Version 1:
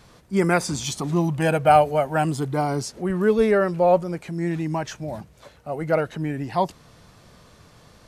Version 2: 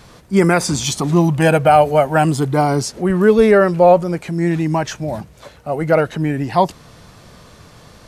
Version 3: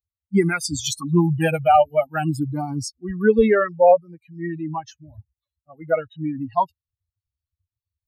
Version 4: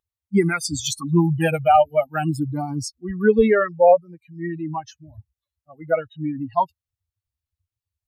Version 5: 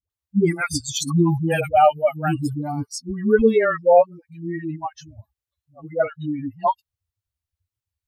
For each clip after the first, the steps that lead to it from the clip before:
maximiser +9 dB; gain -1 dB
per-bin expansion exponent 3
wow and flutter 24 cents
dispersion highs, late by 0.101 s, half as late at 420 Hz

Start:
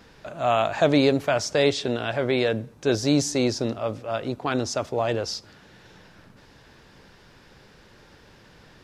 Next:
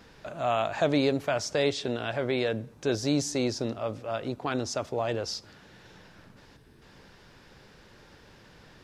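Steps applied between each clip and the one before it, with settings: spectral gain 6.56–6.82, 470–7900 Hz -9 dB; in parallel at -2 dB: compressor, threshold -30 dBFS, peak gain reduction 15 dB; on the sum: gain -7 dB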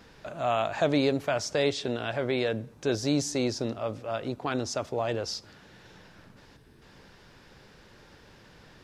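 nothing audible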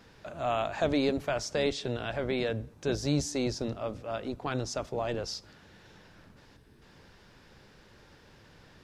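octaver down 1 oct, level -5 dB; gain -3 dB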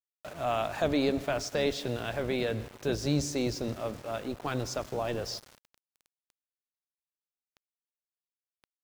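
reverb RT60 2.0 s, pre-delay 88 ms, DRR 16 dB; sample gate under -43.5 dBFS

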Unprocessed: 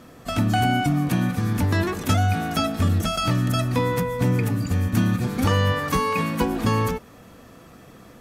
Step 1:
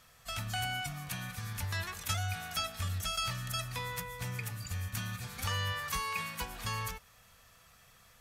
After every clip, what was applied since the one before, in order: passive tone stack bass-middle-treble 10-0-10; gain -4 dB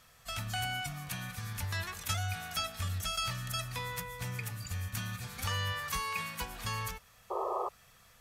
painted sound noise, 7.3–7.69, 350–1300 Hz -34 dBFS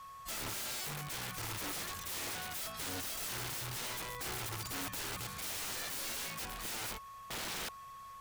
whine 1100 Hz -48 dBFS; wrapped overs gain 35.5 dB

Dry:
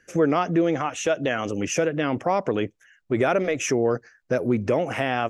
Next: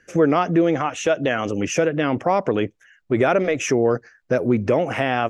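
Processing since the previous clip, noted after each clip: high shelf 7300 Hz -8 dB; gain +3.5 dB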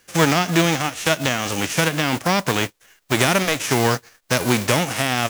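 spectral whitening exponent 0.3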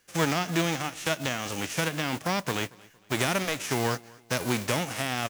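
feedback echo 0.23 s, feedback 40%, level -24 dB; gain -9 dB

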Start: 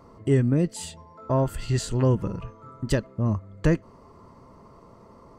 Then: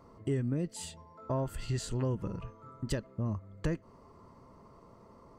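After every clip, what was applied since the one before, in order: compressor 2.5:1, threshold -24 dBFS, peak gain reduction 6.5 dB; gain -6 dB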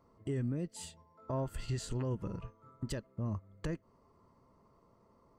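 limiter -28 dBFS, peak gain reduction 6.5 dB; upward expander 1.5:1, over -55 dBFS; gain +1 dB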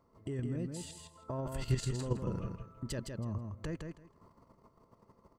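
level quantiser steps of 11 dB; on a send: feedback echo 0.162 s, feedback 18%, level -5 dB; on the sum: gain +7 dB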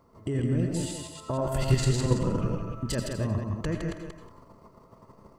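reverse delay 0.172 s, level -5.5 dB; on a send at -6 dB: reverb RT60 0.40 s, pre-delay 77 ms; on the sum: gain +8.5 dB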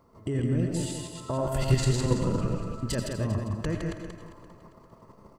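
feedback echo 0.399 s, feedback 36%, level -16 dB

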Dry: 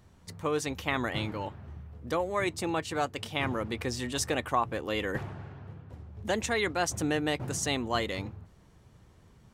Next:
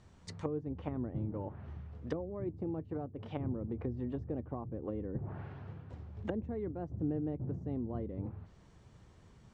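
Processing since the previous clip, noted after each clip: treble ducked by the level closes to 310 Hz, closed at -29 dBFS; steep low-pass 8900 Hz; gain -1.5 dB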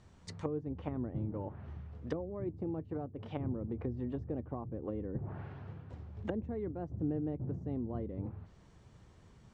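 nothing audible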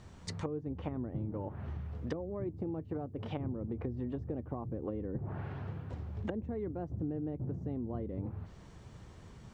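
compressor 3:1, threshold -43 dBFS, peak gain reduction 10 dB; gain +7 dB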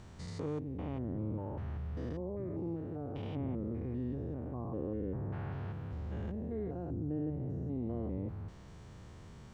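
stepped spectrum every 0.2 s; gain +2 dB

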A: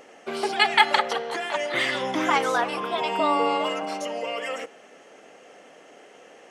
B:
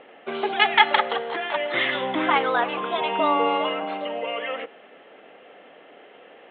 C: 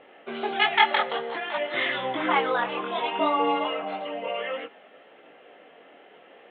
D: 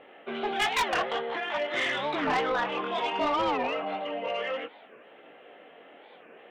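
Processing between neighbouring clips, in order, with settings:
steep low-pass 3800 Hz 96 dB/oct; low shelf 100 Hz -7.5 dB; gain +1.5 dB
chorus voices 2, 0.57 Hz, delay 21 ms, depth 4.5 ms
soft clip -21.5 dBFS, distortion -9 dB; record warp 45 rpm, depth 250 cents

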